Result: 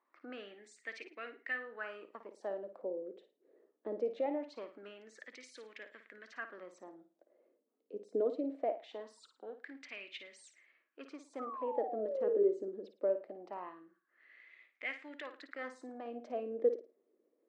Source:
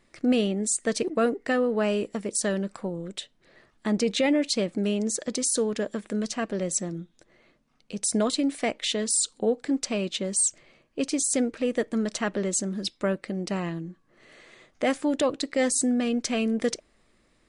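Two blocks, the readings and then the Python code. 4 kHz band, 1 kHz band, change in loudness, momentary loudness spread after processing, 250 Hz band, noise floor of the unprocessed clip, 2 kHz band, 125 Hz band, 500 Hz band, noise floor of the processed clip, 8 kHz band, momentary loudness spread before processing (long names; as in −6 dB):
−23.5 dB, −10.0 dB, −13.0 dB, 19 LU, −20.5 dB, −66 dBFS, −10.5 dB, below −30 dB, −9.0 dB, −81 dBFS, below −35 dB, 9 LU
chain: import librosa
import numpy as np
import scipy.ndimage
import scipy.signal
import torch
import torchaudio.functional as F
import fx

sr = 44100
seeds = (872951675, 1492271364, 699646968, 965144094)

y = scipy.signal.sosfilt(scipy.signal.butter(2, 5200.0, 'lowpass', fs=sr, output='sos'), x)
y = fx.spec_paint(y, sr, seeds[0], shape='fall', start_s=11.39, length_s=1.09, low_hz=380.0, high_hz=1300.0, level_db=-31.0)
y = fx.ladder_highpass(y, sr, hz=240.0, resonance_pct=45)
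y = fx.room_flutter(y, sr, wall_m=9.4, rt60_s=0.32)
y = fx.filter_lfo_bandpass(y, sr, shape='sine', hz=0.22, low_hz=430.0, high_hz=2200.0, q=4.3)
y = y * librosa.db_to_amplitude(5.0)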